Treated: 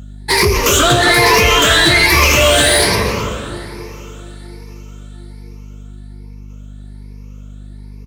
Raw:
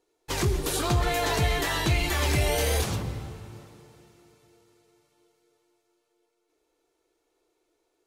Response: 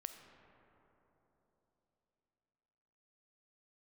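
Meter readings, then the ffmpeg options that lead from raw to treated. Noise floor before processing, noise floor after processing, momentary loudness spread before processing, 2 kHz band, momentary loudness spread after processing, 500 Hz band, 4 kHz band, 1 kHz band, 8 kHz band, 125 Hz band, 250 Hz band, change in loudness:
-76 dBFS, -32 dBFS, 13 LU, +19.5 dB, 15 LU, +15.5 dB, +19.0 dB, +16.0 dB, +17.0 dB, +8.5 dB, +13.5 dB, +16.0 dB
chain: -filter_complex "[0:a]afftfilt=real='re*pow(10,18/40*sin(2*PI*(0.85*log(max(b,1)*sr/1024/100)/log(2)-(1.2)*(pts-256)/sr)))':imag='im*pow(10,18/40*sin(2*PI*(0.85*log(max(b,1)*sr/1024/100)/log(2)-(1.2)*(pts-256)/sr)))':win_size=1024:overlap=0.75,equalizer=f=780:t=o:w=0.24:g=-12.5,bandreject=f=50:t=h:w=6,bandreject=f=100:t=h:w=6,bandreject=f=150:t=h:w=6,acontrast=88,asplit=2[s0][s1];[s1]highpass=f=720:p=1,volume=7.08,asoftclip=type=tanh:threshold=0.631[s2];[s0][s2]amix=inputs=2:normalize=0,lowpass=f=6800:p=1,volume=0.501,asplit=2[s3][s4];[s4]adelay=261,lowpass=f=1600:p=1,volume=0.596,asplit=2[s5][s6];[s6]adelay=261,lowpass=f=1600:p=1,volume=0.24,asplit=2[s7][s8];[s8]adelay=261,lowpass=f=1600:p=1,volume=0.24[s9];[s3][s5][s7][s9]amix=inputs=4:normalize=0,aeval=exprs='val(0)+0.0251*(sin(2*PI*50*n/s)+sin(2*PI*2*50*n/s)/2+sin(2*PI*3*50*n/s)/3+sin(2*PI*4*50*n/s)/4+sin(2*PI*5*50*n/s)/5)':c=same,volume=1.12"

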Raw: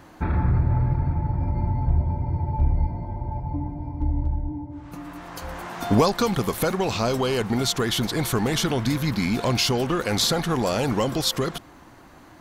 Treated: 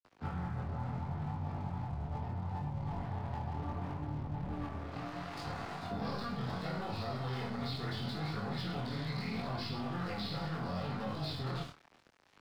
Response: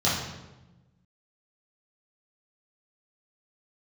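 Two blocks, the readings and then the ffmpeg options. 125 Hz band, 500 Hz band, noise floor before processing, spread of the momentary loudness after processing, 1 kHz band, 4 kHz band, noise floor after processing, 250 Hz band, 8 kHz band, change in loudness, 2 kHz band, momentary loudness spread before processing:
-13.0 dB, -17.5 dB, -48 dBFS, 3 LU, -12.0 dB, -17.0 dB, -65 dBFS, -14.0 dB, -30.0 dB, -15.0 dB, -13.5 dB, 11 LU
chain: -filter_complex "[0:a]aresample=11025,aeval=exprs='max(val(0),0)':c=same,aresample=44100[s0];[1:a]atrim=start_sample=2205,atrim=end_sample=6615[s1];[s0][s1]afir=irnorm=-1:irlink=0,aeval=exprs='sgn(val(0))*max(abs(val(0))-0.0266,0)':c=same,flanger=delay=19.5:depth=6.1:speed=0.72,areverse,acompressor=threshold=0.0891:ratio=6,areverse,lowshelf=f=150:g=-7,acrossover=split=180|540[s2][s3][s4];[s2]acompressor=threshold=0.0224:ratio=4[s5];[s3]acompressor=threshold=0.00708:ratio=4[s6];[s4]acompressor=threshold=0.0141:ratio=4[s7];[s5][s6][s7]amix=inputs=3:normalize=0,adynamicequalizer=threshold=0.00112:dfrequency=3100:dqfactor=5:tfrequency=3100:tqfactor=5:attack=5:release=100:ratio=0.375:range=2:mode=cutabove:tftype=bell,volume=0.562"

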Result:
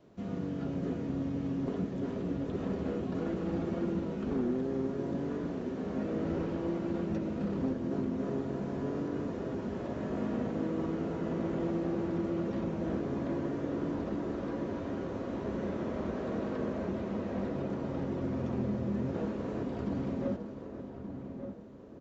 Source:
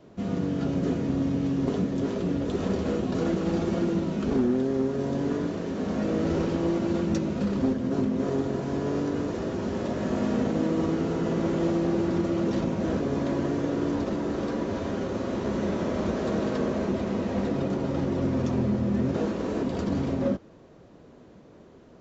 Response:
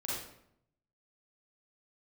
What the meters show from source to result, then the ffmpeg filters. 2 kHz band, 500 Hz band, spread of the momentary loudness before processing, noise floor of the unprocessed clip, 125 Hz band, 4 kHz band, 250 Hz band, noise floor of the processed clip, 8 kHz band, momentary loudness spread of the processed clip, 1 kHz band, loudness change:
-8.5 dB, -7.5 dB, 4 LU, -51 dBFS, -7.0 dB, under -10 dB, -7.0 dB, -43 dBFS, no reading, 4 LU, -7.5 dB, -7.5 dB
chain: -filter_complex "[0:a]asplit=2[s0][s1];[s1]aecho=0:1:534:0.15[s2];[s0][s2]amix=inputs=2:normalize=0,acrossover=split=2900[s3][s4];[s4]acompressor=threshold=0.00141:ratio=4:attack=1:release=60[s5];[s3][s5]amix=inputs=2:normalize=0,asplit=2[s6][s7];[s7]adelay=1175,lowpass=f=1600:p=1,volume=0.398,asplit=2[s8][s9];[s9]adelay=1175,lowpass=f=1600:p=1,volume=0.41,asplit=2[s10][s11];[s11]adelay=1175,lowpass=f=1600:p=1,volume=0.41,asplit=2[s12][s13];[s13]adelay=1175,lowpass=f=1600:p=1,volume=0.41,asplit=2[s14][s15];[s15]adelay=1175,lowpass=f=1600:p=1,volume=0.41[s16];[s8][s10][s12][s14][s16]amix=inputs=5:normalize=0[s17];[s6][s17]amix=inputs=2:normalize=0,volume=0.398"

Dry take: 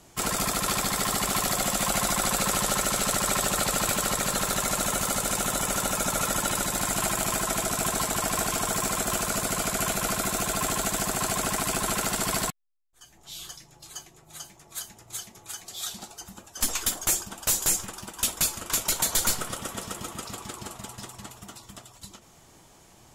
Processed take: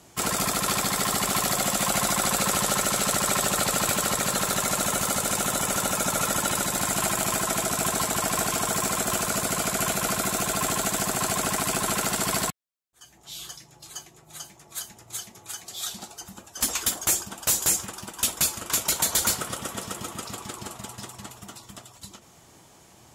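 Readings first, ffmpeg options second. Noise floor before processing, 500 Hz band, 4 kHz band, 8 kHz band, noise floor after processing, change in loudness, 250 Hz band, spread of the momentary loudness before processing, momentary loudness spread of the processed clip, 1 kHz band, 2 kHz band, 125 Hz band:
-55 dBFS, +1.5 dB, +1.5 dB, +1.5 dB, -54 dBFS, +1.5 dB, +1.5 dB, 17 LU, 17 LU, +1.5 dB, +1.5 dB, +1.0 dB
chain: -af "highpass=61,volume=1.19"

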